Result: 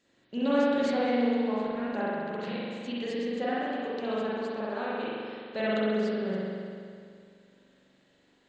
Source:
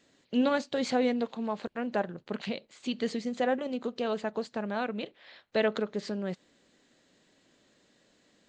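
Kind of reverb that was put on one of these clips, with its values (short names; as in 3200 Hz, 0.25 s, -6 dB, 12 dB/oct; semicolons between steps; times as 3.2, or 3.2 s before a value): spring tank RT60 2.3 s, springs 42 ms, chirp 25 ms, DRR -8 dB; gain -7 dB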